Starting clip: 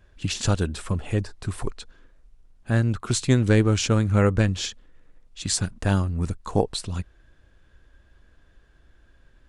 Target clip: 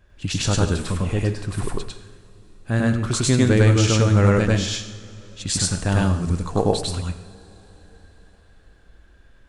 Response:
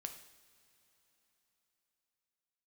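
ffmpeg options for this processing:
-filter_complex "[0:a]asplit=2[link_01][link_02];[1:a]atrim=start_sample=2205,asetrate=41895,aresample=44100,adelay=100[link_03];[link_02][link_03]afir=irnorm=-1:irlink=0,volume=5dB[link_04];[link_01][link_04]amix=inputs=2:normalize=0"

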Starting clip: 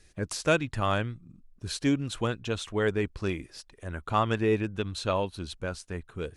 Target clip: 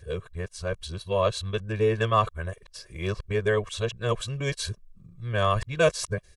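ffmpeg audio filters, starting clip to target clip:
ffmpeg -i in.wav -af "areverse,aecho=1:1:1.8:0.88" out.wav

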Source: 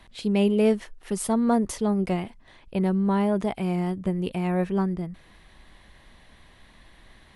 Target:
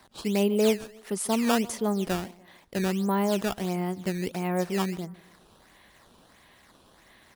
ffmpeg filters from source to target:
ffmpeg -i in.wav -filter_complex "[0:a]highpass=frequency=250:poles=1,aecho=1:1:146|292|438:0.0891|0.0348|0.0136,acrossover=split=3400[link_01][link_02];[link_01]acrusher=samples=12:mix=1:aa=0.000001:lfo=1:lforange=19.2:lforate=1.5[link_03];[link_03][link_02]amix=inputs=2:normalize=0" out.wav

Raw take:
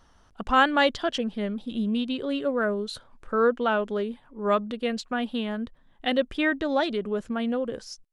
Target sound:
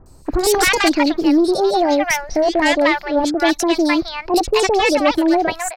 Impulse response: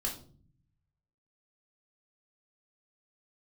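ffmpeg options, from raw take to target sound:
-filter_complex "[0:a]aeval=exprs='0.376*sin(PI/2*3.55*val(0)/0.376)':channel_layout=same,asetrate=62181,aresample=44100,acrossover=split=920|4200[link_01][link_02][link_03];[link_03]adelay=60[link_04];[link_02]adelay=260[link_05];[link_01][link_05][link_04]amix=inputs=3:normalize=0"

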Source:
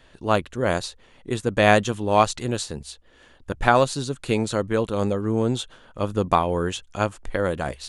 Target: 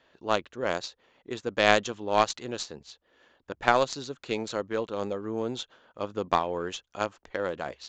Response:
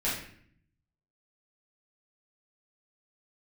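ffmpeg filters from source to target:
-af "highpass=frequency=160:poles=1,bass=frequency=250:gain=-7,treble=frequency=4000:gain=11,aeval=exprs='1.19*(cos(1*acos(clip(val(0)/1.19,-1,1)))-cos(1*PI/2))+0.188*(cos(3*acos(clip(val(0)/1.19,-1,1)))-cos(3*PI/2))+0.0335*(cos(5*acos(clip(val(0)/1.19,-1,1)))-cos(5*PI/2))+0.075*(cos(6*acos(clip(val(0)/1.19,-1,1)))-cos(6*PI/2))+0.0376*(cos(8*acos(clip(val(0)/1.19,-1,1)))-cos(8*PI/2))':channel_layout=same,adynamicsmooth=sensitivity=1.5:basefreq=2900,aresample=16000,aresample=44100,volume=-2dB"

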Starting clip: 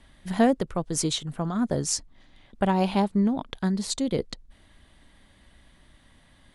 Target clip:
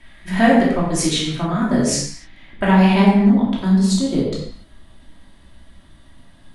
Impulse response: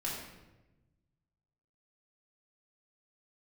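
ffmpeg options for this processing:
-filter_complex "[0:a]asetnsamples=nb_out_samples=441:pad=0,asendcmd='3.26 equalizer g -4',equalizer=frequency=2100:width=1.5:gain=9.5[link_01];[1:a]atrim=start_sample=2205,afade=type=out:start_time=0.35:duration=0.01,atrim=end_sample=15876[link_02];[link_01][link_02]afir=irnorm=-1:irlink=0,volume=4dB"

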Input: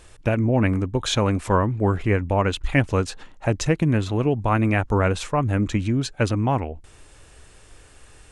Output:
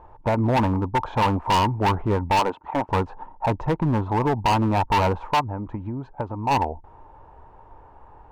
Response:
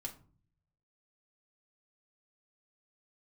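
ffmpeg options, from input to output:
-filter_complex "[0:a]asettb=1/sr,asplit=3[link_01][link_02][link_03];[link_01]atrim=end=2.394[link_04];[link_02]atrim=start=2.39:end=2.89,asetpts=PTS-STARTPTS,afade=type=in:duration=0.004:curve=qsin,afade=type=out:start_time=0.496:duration=0.004:curve=qsin,highpass=260[link_05];[link_03]atrim=start=2.886[link_06];[link_04][link_05]acrossfade=duration=0.004:curve1=hsin:curve2=qsin[link_07];[link_07][link_06]acrossfade=duration=0.004:curve1=qsin:curve2=hsin,asplit=3[link_08][link_09][link_10];[link_08]afade=type=out:start_time=5.39:duration=0.02[link_11];[link_09]acompressor=threshold=-26dB:ratio=16,afade=type=in:start_time=5.39:duration=0.02,afade=type=out:start_time=6.5:duration=0.02[link_12];[link_10]afade=type=in:start_time=6.5:duration=0.02[link_13];[link_11][link_12][link_13]amix=inputs=3:normalize=0,lowpass=frequency=910:width_type=q:width=10,volume=15.5dB,asoftclip=hard,volume=-15.5dB,volume=-1dB"

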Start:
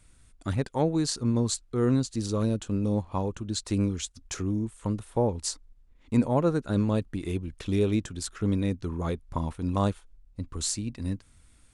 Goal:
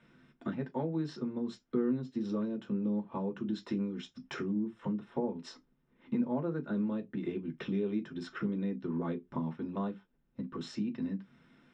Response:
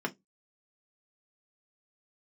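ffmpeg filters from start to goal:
-filter_complex "[0:a]lowpass=frequency=5200:width=0.5412,lowpass=frequency=5200:width=1.3066,acompressor=threshold=-37dB:ratio=6[link_01];[1:a]atrim=start_sample=2205,atrim=end_sample=6615[link_02];[link_01][link_02]afir=irnorm=-1:irlink=0,volume=-2.5dB"

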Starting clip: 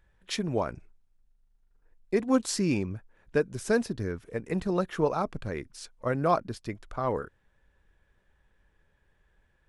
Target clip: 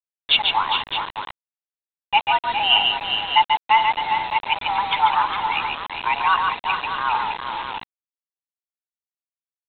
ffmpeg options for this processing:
ffmpeg -i in.wav -af "afftfilt=real='re*gte(hypot(re,im),0.0158)':imag='im*gte(hypot(re,im),0.0158)':win_size=1024:overlap=0.75,aeval=exprs='val(0)+0.00562*sin(2*PI*550*n/s)':channel_layout=same,aexciter=amount=15.6:drive=2.6:freq=2000,highpass=frequency=400:width=0.5412,highpass=frequency=400:width=1.3066,equalizer=frequency=430:width_type=q:width=4:gain=5,equalizer=frequency=1300:width_type=q:width=4:gain=-9,equalizer=frequency=2000:width_type=q:width=4:gain=-3,lowpass=frequency=2800:width=0.5412,lowpass=frequency=2800:width=1.3066,aecho=1:1:141|407|456|611:0.596|0.398|0.15|0.299,acontrast=84,afreqshift=430,aresample=8000,acrusher=bits=4:mix=0:aa=0.000001,aresample=44100" out.wav

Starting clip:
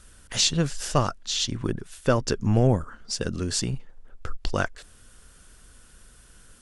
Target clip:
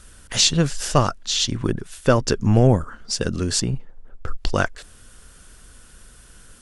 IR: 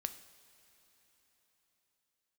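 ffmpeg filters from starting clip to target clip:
-filter_complex "[0:a]asettb=1/sr,asplit=3[link_01][link_02][link_03];[link_01]atrim=end=3.604[link_04];[link_02]atrim=start=3.6:end=4.28,asetpts=PTS-STARTPTS,afade=type=in:duration=0.004:curve=qsin,afade=type=out:start_time=0.676:duration=0.004:curve=qsin,highshelf=frequency=2000:gain=-9.5[link_05];[link_03]atrim=start=4.276[link_06];[link_04][link_05]acrossfade=duration=0.004:curve1=hsin:curve2=qsin[link_07];[link_07][link_06]acrossfade=duration=0.004:curve1=qsin:curve2=hsin,volume=5dB"

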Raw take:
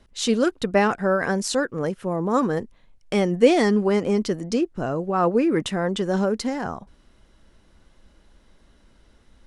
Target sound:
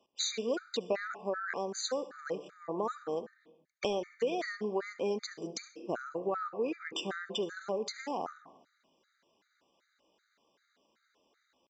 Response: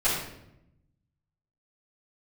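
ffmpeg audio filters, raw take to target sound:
-filter_complex "[0:a]highpass=410,agate=range=-12dB:threshold=-38dB:ratio=16:detection=peak,acompressor=threshold=-35dB:ratio=8,atempo=0.81,asplit=2[link_01][link_02];[1:a]atrim=start_sample=2205,adelay=60[link_03];[link_02][link_03]afir=irnorm=-1:irlink=0,volume=-26.5dB[link_04];[link_01][link_04]amix=inputs=2:normalize=0,aresample=16000,aresample=44100,afftfilt=real='re*gt(sin(2*PI*2.6*pts/sr)*(1-2*mod(floor(b*sr/1024/1200),2)),0)':imag='im*gt(sin(2*PI*2.6*pts/sr)*(1-2*mod(floor(b*sr/1024/1200),2)),0)':win_size=1024:overlap=0.75,volume=5.5dB"

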